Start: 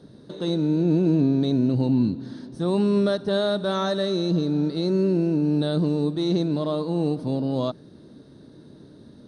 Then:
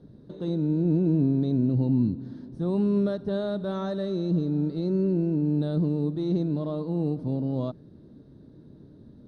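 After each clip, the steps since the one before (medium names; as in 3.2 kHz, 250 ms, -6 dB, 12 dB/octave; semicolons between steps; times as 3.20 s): tilt EQ -3 dB/octave; trim -9 dB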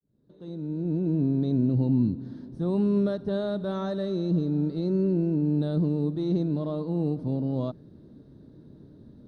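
fade-in on the opening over 1.56 s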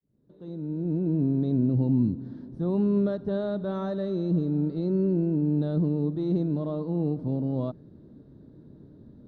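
treble shelf 3.6 kHz -11.5 dB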